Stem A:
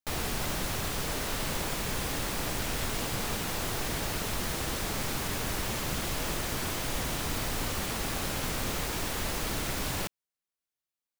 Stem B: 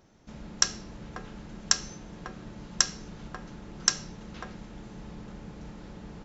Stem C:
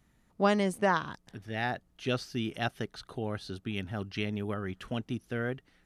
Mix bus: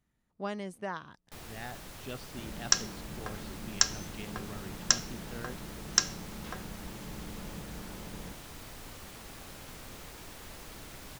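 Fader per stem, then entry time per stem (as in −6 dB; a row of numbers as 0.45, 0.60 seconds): −14.5, −1.0, −11.0 decibels; 1.25, 2.10, 0.00 seconds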